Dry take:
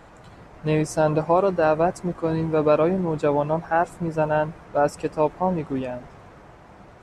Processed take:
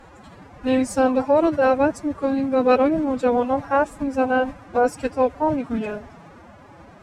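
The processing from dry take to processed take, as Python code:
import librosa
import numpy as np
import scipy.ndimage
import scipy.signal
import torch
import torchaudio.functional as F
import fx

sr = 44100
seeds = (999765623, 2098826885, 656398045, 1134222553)

y = fx.pitch_keep_formants(x, sr, semitones=9.0)
y = F.gain(torch.from_numpy(y), 2.0).numpy()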